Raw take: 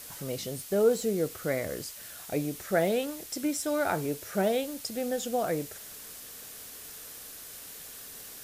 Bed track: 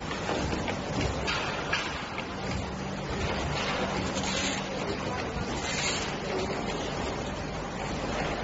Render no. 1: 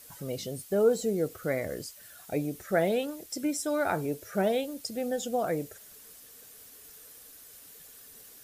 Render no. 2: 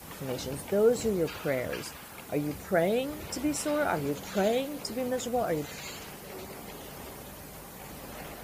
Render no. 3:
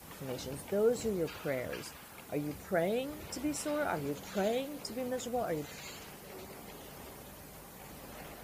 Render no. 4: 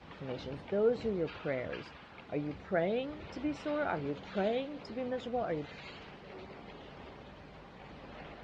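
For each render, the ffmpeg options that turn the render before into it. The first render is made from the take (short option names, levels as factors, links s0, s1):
-af "afftdn=nr=9:nf=-45"
-filter_complex "[1:a]volume=0.251[s0];[0:a][s0]amix=inputs=2:normalize=0"
-af "volume=0.531"
-af "lowpass=f=3900:w=0.5412,lowpass=f=3900:w=1.3066"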